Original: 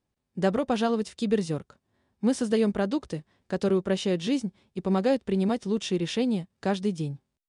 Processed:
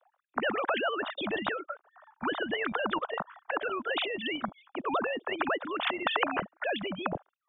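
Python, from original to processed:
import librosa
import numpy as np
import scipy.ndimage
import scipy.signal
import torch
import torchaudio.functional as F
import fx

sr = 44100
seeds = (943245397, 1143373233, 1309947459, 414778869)

y = fx.sine_speech(x, sr)
y = fx.band_shelf(y, sr, hz=950.0, db=16.0, octaves=1.7)
y = fx.spectral_comp(y, sr, ratio=4.0)
y = y * librosa.db_to_amplitude(-9.0)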